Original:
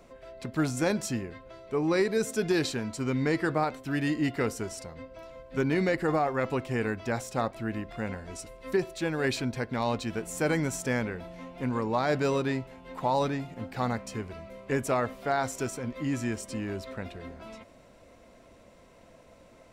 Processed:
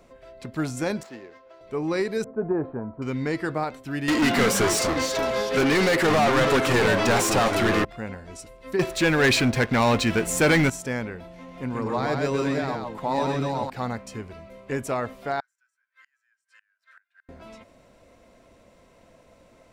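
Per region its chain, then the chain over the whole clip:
1.03–1.61 s: median filter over 15 samples + three-band isolator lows -21 dB, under 340 Hz, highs -14 dB, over 6.1 kHz
2.24–3.02 s: dynamic bell 860 Hz, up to +5 dB, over -40 dBFS, Q 0.83 + inverse Chebyshev low-pass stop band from 6.5 kHz, stop band 80 dB
4.08–7.85 s: treble shelf 9.5 kHz +9.5 dB + overdrive pedal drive 31 dB, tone 5.5 kHz, clips at -14 dBFS + ever faster or slower copies 141 ms, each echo -4 st, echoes 2, each echo -6 dB
8.79–10.70 s: dynamic bell 2.1 kHz, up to +6 dB, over -46 dBFS, Q 1 + waveshaping leveller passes 3
11.35–13.70 s: chunks repeated in reverse 498 ms, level -3.5 dB + delay 130 ms -4 dB
15.40–17.29 s: ladder high-pass 1.5 kHz, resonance 85% + inverted gate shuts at -42 dBFS, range -29 dB
whole clip: none

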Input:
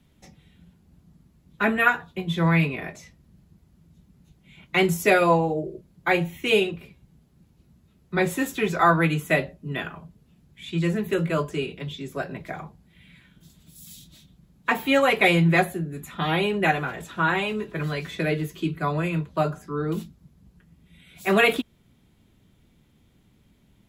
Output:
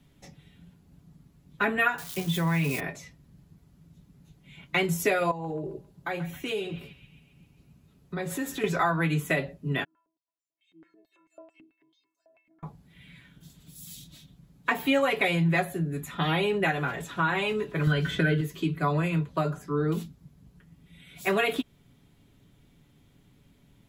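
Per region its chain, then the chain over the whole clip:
1.98–2.80 s: zero-crossing glitches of -27 dBFS + compression 3:1, threshold -22 dBFS
5.31–8.64 s: peaking EQ 2.3 kHz -4.5 dB 0.72 oct + compression 4:1, threshold -30 dBFS + band-passed feedback delay 134 ms, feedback 64%, band-pass 2.3 kHz, level -12.5 dB
9.84–12.63 s: inharmonic resonator 320 Hz, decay 0.61 s, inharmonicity 0.008 + step-sequenced band-pass 9.1 Hz 230–6900 Hz
17.87–18.41 s: bass shelf 340 Hz +10.5 dB + small resonant body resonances 1.5/3.1 kHz, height 18 dB, ringing for 30 ms
whole clip: compression 4:1, threshold -23 dBFS; comb 7.1 ms, depth 35%

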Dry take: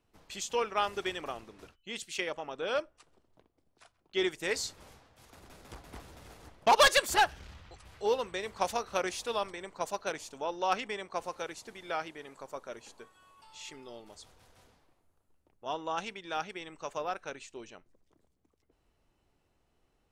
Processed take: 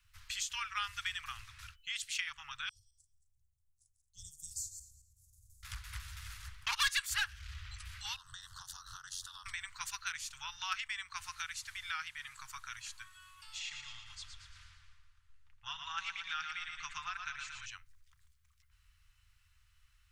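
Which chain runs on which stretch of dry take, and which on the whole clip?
2.69–5.63 s: backward echo that repeats 111 ms, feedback 41%, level -8 dB + elliptic band-stop 300–7000 Hz, stop band 60 dB + upward expansion, over -55 dBFS
8.16–9.46 s: compression 16:1, threshold -40 dBFS + Butterworth band-stop 2.3 kHz, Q 1.3 + ring modulator 45 Hz
13.59–17.66 s: distance through air 85 m + comb 5.8 ms, depth 33% + feedback delay 115 ms, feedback 53%, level -7 dB
whole clip: inverse Chebyshev band-stop 230–590 Hz, stop band 60 dB; compression 2:1, threshold -49 dBFS; trim +8 dB

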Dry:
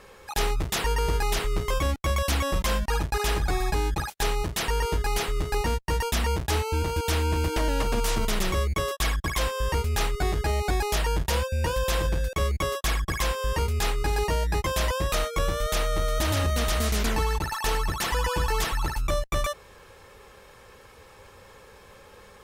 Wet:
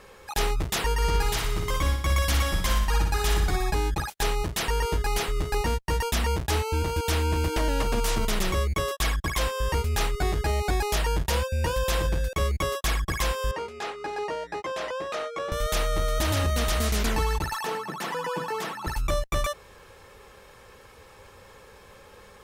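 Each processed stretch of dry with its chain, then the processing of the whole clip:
0.94–3.56 s: peaking EQ 500 Hz -5 dB 1.5 oct + band-stop 2.6 kHz, Q 23 + feedback delay 60 ms, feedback 56%, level -6 dB
13.51–15.52 s: band-pass 370–7100 Hz + treble shelf 2.4 kHz -11 dB + band-stop 990 Hz, Q 14
17.64–18.87 s: steep high-pass 150 Hz 48 dB/octave + treble shelf 2.2 kHz -10 dB
whole clip: none

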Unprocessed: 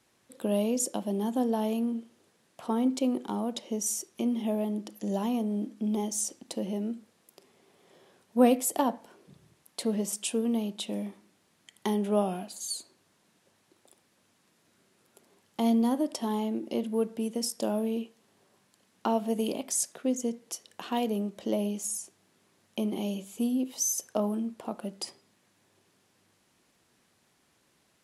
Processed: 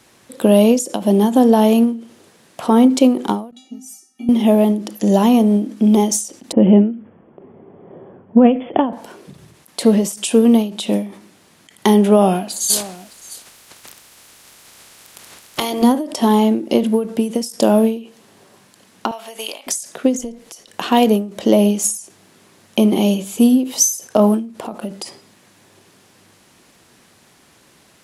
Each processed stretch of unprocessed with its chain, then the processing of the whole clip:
3.51–4.29 s: tone controls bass +2 dB, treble -5 dB + feedback comb 260 Hz, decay 0.31 s, harmonics odd, mix 100%
6.52–8.93 s: brick-wall FIR low-pass 3.5 kHz + bass shelf 400 Hz +9 dB + level-controlled noise filter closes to 910 Hz, open at -16 dBFS
12.69–15.82 s: spectral peaks clipped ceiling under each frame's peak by 23 dB + compressor with a negative ratio -34 dBFS + delay 613 ms -19 dB
19.11–19.67 s: high-pass 1.2 kHz + treble shelf 9.2 kHz -7 dB
20.19–20.70 s: AM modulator 220 Hz, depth 40% + tape noise reduction on one side only encoder only
whole clip: loudness maximiser +18 dB; endings held to a fixed fall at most 130 dB/s; trim -1 dB

